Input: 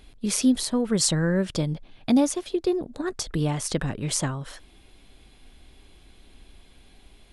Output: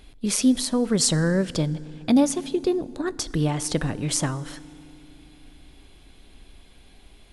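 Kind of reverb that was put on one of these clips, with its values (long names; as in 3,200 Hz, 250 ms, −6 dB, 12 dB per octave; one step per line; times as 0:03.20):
feedback delay network reverb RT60 3 s, low-frequency decay 1.3×, high-frequency decay 0.6×, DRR 18 dB
level +1.5 dB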